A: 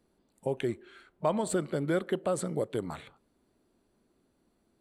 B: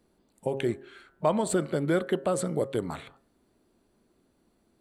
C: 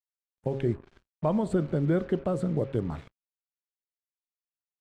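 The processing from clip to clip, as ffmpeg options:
-af "bandreject=f=135.9:t=h:w=4,bandreject=f=271.8:t=h:w=4,bandreject=f=407.7:t=h:w=4,bandreject=f=543.6:t=h:w=4,bandreject=f=679.5:t=h:w=4,bandreject=f=815.4:t=h:w=4,bandreject=f=951.3:t=h:w=4,bandreject=f=1.0872k:t=h:w=4,bandreject=f=1.2231k:t=h:w=4,bandreject=f=1.359k:t=h:w=4,bandreject=f=1.4949k:t=h:w=4,bandreject=f=1.6308k:t=h:w=4,bandreject=f=1.7667k:t=h:w=4,bandreject=f=1.9026k:t=h:w=4,volume=3.5dB"
-af "acrusher=bits=6:mix=0:aa=0.5,aemphasis=mode=reproduction:type=riaa,volume=-5dB"

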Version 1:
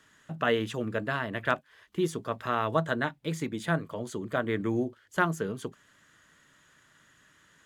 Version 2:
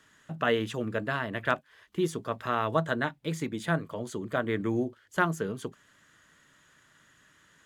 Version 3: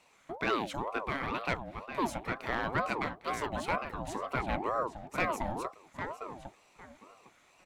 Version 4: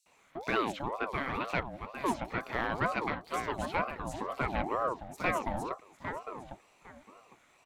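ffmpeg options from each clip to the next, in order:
-af anull
-filter_complex "[0:a]asoftclip=type=tanh:threshold=-19dB,asplit=2[a][b];[b]adelay=805,lowpass=f=3.2k:p=1,volume=-7dB,asplit=2[c][d];[d]adelay=805,lowpass=f=3.2k:p=1,volume=0.21,asplit=2[e][f];[f]adelay=805,lowpass=f=3.2k:p=1,volume=0.21[g];[a][c][e][g]amix=inputs=4:normalize=0,aeval=exprs='val(0)*sin(2*PI*660*n/s+660*0.4/2.1*sin(2*PI*2.1*n/s))':c=same"
-filter_complex "[0:a]aeval=exprs='0.133*(cos(1*acos(clip(val(0)/0.133,-1,1)))-cos(1*PI/2))+0.00422*(cos(7*acos(clip(val(0)/0.133,-1,1)))-cos(7*PI/2))':c=same,asplit=2[a][b];[b]asoftclip=type=hard:threshold=-35.5dB,volume=-11dB[c];[a][c]amix=inputs=2:normalize=0,acrossover=split=4900[d][e];[d]adelay=60[f];[f][e]amix=inputs=2:normalize=0"

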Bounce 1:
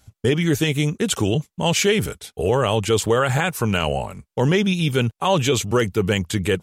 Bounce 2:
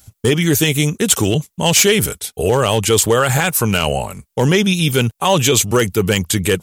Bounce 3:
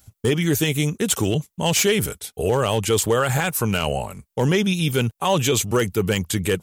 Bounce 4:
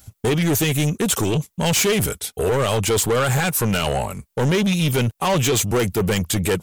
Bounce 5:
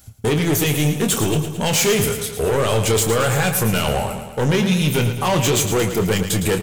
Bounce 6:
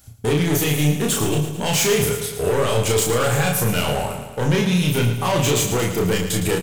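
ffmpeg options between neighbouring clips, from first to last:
-af "aemphasis=mode=production:type=50kf,volume=9dB,asoftclip=hard,volume=-9dB,volume=4dB"
-af "equalizer=f=7.3k:w=0.3:g=-3,volume=-5dB"
-af "asoftclip=type=tanh:threshold=-21dB,volume=6dB"
-filter_complex "[0:a]asplit=2[a][b];[b]adelay=27,volume=-8dB[c];[a][c]amix=inputs=2:normalize=0,asplit=2[d][e];[e]aecho=0:1:111|222|333|444|555|666|777:0.335|0.198|0.117|0.0688|0.0406|0.0239|0.0141[f];[d][f]amix=inputs=2:normalize=0"
-filter_complex "[0:a]asplit=2[a][b];[b]adelay=34,volume=-3dB[c];[a][c]amix=inputs=2:normalize=0,volume=-3dB"

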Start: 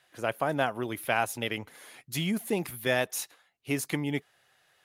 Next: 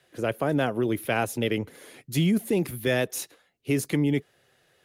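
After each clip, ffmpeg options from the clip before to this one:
-filter_complex "[0:a]lowshelf=f=610:t=q:w=1.5:g=8,acrossover=split=120|940|5700[a][b][c][d];[b]alimiter=limit=-18.5dB:level=0:latency=1[e];[a][e][c][d]amix=inputs=4:normalize=0,volume=1dB"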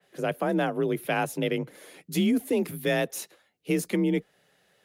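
-af "afreqshift=37,adynamicequalizer=threshold=0.00794:dfrequency=2800:dqfactor=0.7:tfrequency=2800:tqfactor=0.7:attack=5:release=100:ratio=0.375:range=2:mode=cutabove:tftype=highshelf,volume=-1dB"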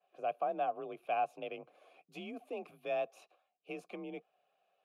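-filter_complex "[0:a]asplit=3[a][b][c];[a]bandpass=f=730:t=q:w=8,volume=0dB[d];[b]bandpass=f=1.09k:t=q:w=8,volume=-6dB[e];[c]bandpass=f=2.44k:t=q:w=8,volume=-9dB[f];[d][e][f]amix=inputs=3:normalize=0"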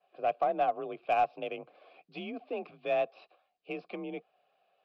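-af "aresample=11025,aresample=44100,aeval=exprs='0.075*(cos(1*acos(clip(val(0)/0.075,-1,1)))-cos(1*PI/2))+0.00531*(cos(2*acos(clip(val(0)/0.075,-1,1)))-cos(2*PI/2))+0.00119*(cos(4*acos(clip(val(0)/0.075,-1,1)))-cos(4*PI/2))+0.00133*(cos(7*acos(clip(val(0)/0.075,-1,1)))-cos(7*PI/2))':c=same,volume=6dB"

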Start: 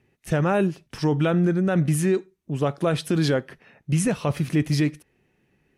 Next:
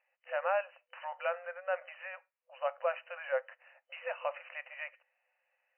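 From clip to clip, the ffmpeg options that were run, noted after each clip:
-af "afftfilt=real='re*between(b*sr/4096,500,3000)':imag='im*between(b*sr/4096,500,3000)':win_size=4096:overlap=0.75,volume=-6.5dB"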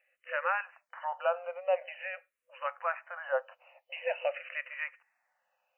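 -filter_complex "[0:a]asplit=2[a][b];[b]afreqshift=-0.46[c];[a][c]amix=inputs=2:normalize=1,volume=6.5dB"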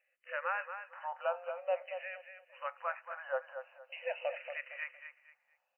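-af "aecho=1:1:231|462|693:0.355|0.0958|0.0259,volume=-5dB"

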